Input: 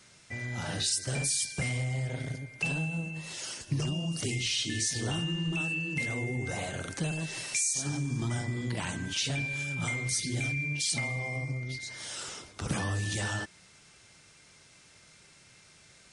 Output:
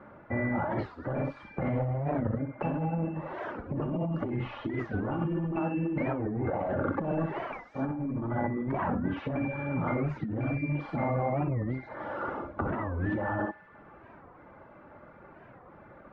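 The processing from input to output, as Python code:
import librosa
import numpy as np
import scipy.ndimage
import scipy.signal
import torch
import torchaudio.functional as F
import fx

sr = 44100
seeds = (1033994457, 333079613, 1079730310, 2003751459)

p1 = fx.peak_eq(x, sr, hz=690.0, db=4.0, octaves=2.5)
p2 = fx.fold_sine(p1, sr, drive_db=10, ceiling_db=-16.5)
p3 = p1 + F.gain(torch.from_numpy(p2), -7.5).numpy()
p4 = scipy.signal.sosfilt(scipy.signal.butter(4, 1300.0, 'lowpass', fs=sr, output='sos'), p3)
p5 = fx.low_shelf(p4, sr, hz=81.0, db=-7.0)
p6 = p5 + 0.41 * np.pad(p5, (int(3.5 * sr / 1000.0), 0))[:len(p5)]
p7 = p6 + fx.echo_thinned(p6, sr, ms=66, feedback_pct=78, hz=810.0, wet_db=-12, dry=0)
p8 = fx.dereverb_blind(p7, sr, rt60_s=0.6)
p9 = fx.room_early_taps(p8, sr, ms=(46, 61), db=(-17.0, -7.0))
p10 = fx.over_compress(p9, sr, threshold_db=-30.0, ratio=-1.0)
y = fx.record_warp(p10, sr, rpm=45.0, depth_cents=250.0)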